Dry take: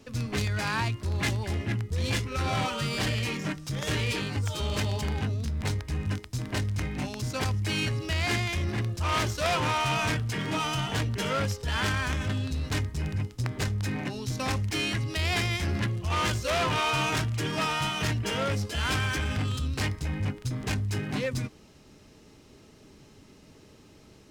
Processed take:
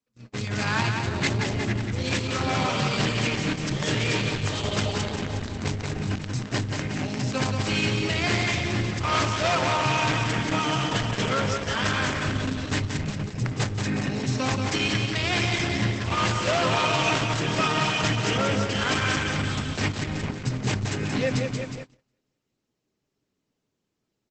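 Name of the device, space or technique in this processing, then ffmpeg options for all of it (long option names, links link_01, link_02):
video call: -filter_complex "[0:a]asettb=1/sr,asplit=3[link_01][link_02][link_03];[link_01]atrim=end=16.574[link_04];[link_02]atrim=start=16.57:end=17.33,asetpts=PTS-STARTPTS,afade=type=in:duration=0.004:curve=qsin,afade=type=out:start_time=0.756:duration=0.004:curve=qsin,equalizer=frequency=100:width=1.5:gain=-2[link_05];[link_03]atrim=start=17.326[link_06];[link_04][link_05]acrossfade=duration=0.004:curve1=hsin:curve2=qsin[link_07];[link_07][link_06]acrossfade=duration=0.004:curve1=qsin:curve2=hsin,highpass=frequency=110:width=0.5412,highpass=frequency=110:width=1.3066,aecho=1:1:181|362|543|724|905|1086|1267:0.596|0.328|0.18|0.0991|0.0545|0.03|0.0165,dynaudnorm=framelen=180:gausssize=5:maxgain=11.5dB,agate=range=-32dB:threshold=-28dB:ratio=16:detection=peak,volume=-6dB" -ar 48000 -c:a libopus -b:a 12k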